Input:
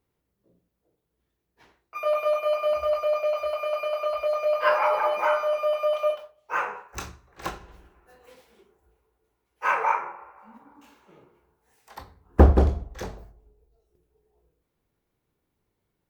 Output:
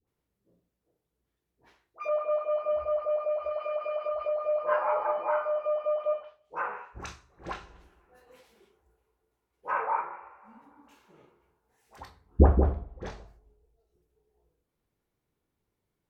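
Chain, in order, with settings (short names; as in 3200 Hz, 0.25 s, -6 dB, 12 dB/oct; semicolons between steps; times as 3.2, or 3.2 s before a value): dispersion highs, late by 75 ms, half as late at 820 Hz; treble ducked by the level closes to 1300 Hz, closed at -23 dBFS; gain -4 dB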